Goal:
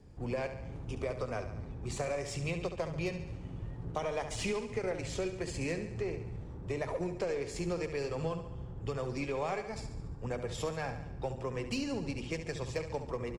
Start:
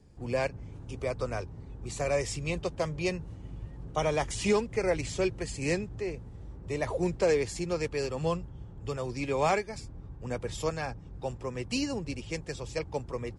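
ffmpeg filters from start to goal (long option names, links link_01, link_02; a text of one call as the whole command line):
ffmpeg -i in.wav -af "highshelf=frequency=4500:gain=-7,bandreject=frequency=50:width_type=h:width=6,bandreject=frequency=100:width_type=h:width=6,bandreject=frequency=150:width_type=h:width=6,bandreject=frequency=200:width_type=h:width=6,bandreject=frequency=250:width_type=h:width=6,bandreject=frequency=300:width_type=h:width=6,bandreject=frequency=350:width_type=h:width=6,acompressor=threshold=-35dB:ratio=6,aecho=1:1:70|140|210|280|350|420|490:0.316|0.183|0.106|0.0617|0.0358|0.0208|0.012,aeval=exprs='0.0473*(cos(1*acos(clip(val(0)/0.0473,-1,1)))-cos(1*PI/2))+0.0015*(cos(6*acos(clip(val(0)/0.0473,-1,1)))-cos(6*PI/2))':channel_layout=same,volume=2.5dB" out.wav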